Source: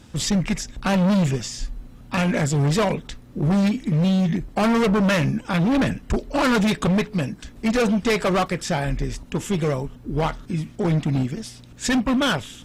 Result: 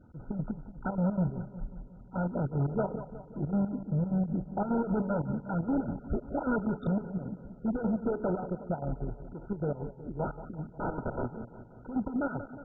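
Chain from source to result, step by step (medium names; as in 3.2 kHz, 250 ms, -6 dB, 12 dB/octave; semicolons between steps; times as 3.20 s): 10.24–11.87 s: integer overflow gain 17 dB; square tremolo 5.1 Hz, depth 65%, duty 60%; de-hum 424.3 Hz, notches 40; on a send: bucket-brigade echo 180 ms, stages 2048, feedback 59%, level -13 dB; on the sum: trim -9 dB; MP2 8 kbps 16 kHz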